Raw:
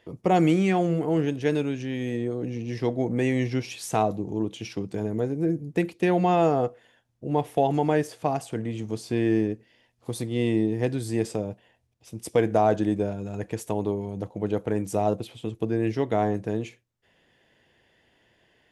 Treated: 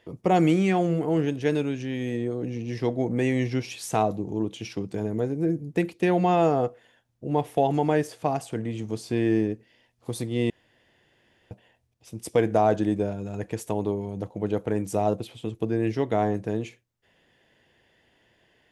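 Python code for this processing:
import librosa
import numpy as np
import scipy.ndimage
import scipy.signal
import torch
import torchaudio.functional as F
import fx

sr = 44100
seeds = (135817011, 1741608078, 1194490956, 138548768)

y = fx.edit(x, sr, fx.room_tone_fill(start_s=10.5, length_s=1.01), tone=tone)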